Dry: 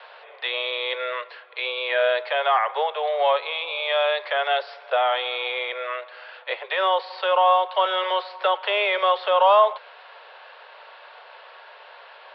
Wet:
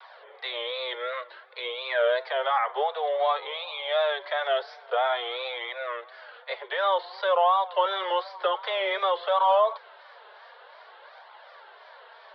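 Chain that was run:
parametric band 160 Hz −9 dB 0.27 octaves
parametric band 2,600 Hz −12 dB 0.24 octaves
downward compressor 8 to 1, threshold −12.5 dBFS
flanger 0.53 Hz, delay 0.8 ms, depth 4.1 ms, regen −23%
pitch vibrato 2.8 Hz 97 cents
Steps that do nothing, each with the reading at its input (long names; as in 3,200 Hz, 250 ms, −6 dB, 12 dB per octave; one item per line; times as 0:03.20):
parametric band 160 Hz: nothing at its input below 360 Hz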